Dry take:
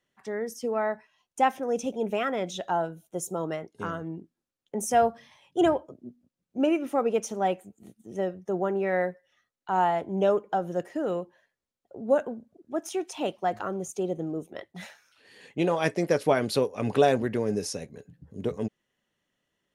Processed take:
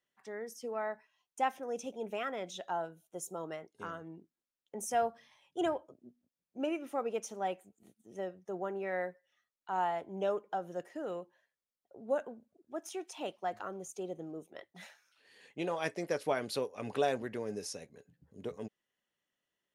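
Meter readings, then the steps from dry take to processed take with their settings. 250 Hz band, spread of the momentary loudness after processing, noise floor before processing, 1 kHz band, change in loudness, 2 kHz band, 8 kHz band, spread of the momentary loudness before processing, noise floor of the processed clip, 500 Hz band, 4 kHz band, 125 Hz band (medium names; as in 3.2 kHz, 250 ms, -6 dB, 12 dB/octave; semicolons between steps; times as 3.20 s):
-12.0 dB, 16 LU, under -85 dBFS, -8.5 dB, -9.5 dB, -8.0 dB, -7.5 dB, 15 LU, under -85 dBFS, -10.0 dB, -7.5 dB, -14.0 dB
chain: bass shelf 310 Hz -8.5 dB; trim -7.5 dB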